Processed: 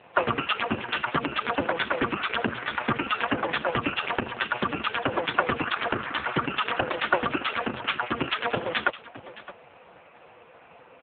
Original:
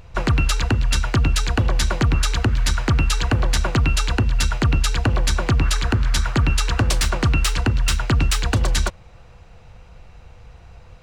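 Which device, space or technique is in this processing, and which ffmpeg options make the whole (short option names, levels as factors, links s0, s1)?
satellite phone: -af "highpass=340,lowpass=3300,aecho=1:1:616:0.141,volume=2.37" -ar 8000 -c:a libopencore_amrnb -b:a 4750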